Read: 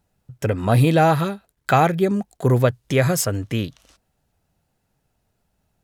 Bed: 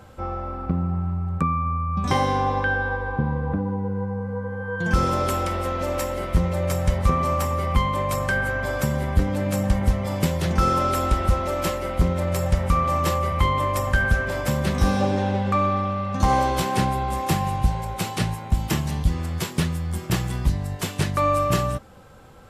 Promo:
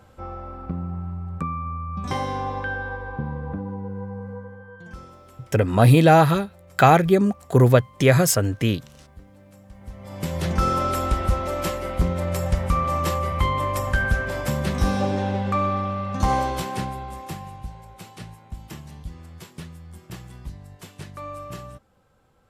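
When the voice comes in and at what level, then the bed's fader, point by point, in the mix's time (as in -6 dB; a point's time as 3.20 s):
5.10 s, +2.0 dB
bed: 4.31 s -5.5 dB
5.21 s -26 dB
9.69 s -26 dB
10.39 s -1.5 dB
16.30 s -1.5 dB
17.65 s -15 dB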